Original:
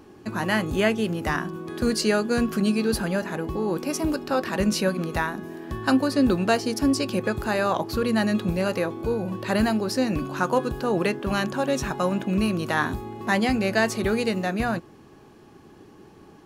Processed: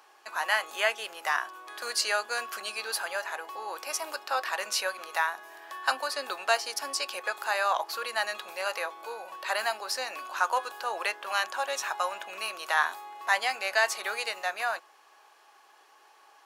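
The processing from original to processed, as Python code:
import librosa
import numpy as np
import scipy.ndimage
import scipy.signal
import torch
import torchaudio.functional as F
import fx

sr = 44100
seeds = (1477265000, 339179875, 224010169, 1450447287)

y = scipy.signal.sosfilt(scipy.signal.butter(4, 720.0, 'highpass', fs=sr, output='sos'), x)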